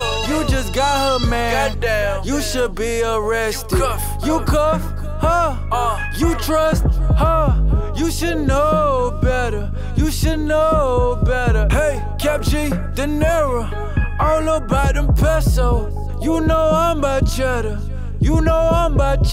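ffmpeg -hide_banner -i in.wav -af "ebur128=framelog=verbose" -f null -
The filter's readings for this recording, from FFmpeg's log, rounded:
Integrated loudness:
  I:         -18.1 LUFS
  Threshold: -28.1 LUFS
Loudness range:
  LRA:         1.7 LU
  Threshold: -38.1 LUFS
  LRA low:   -19.0 LUFS
  LRA high:  -17.3 LUFS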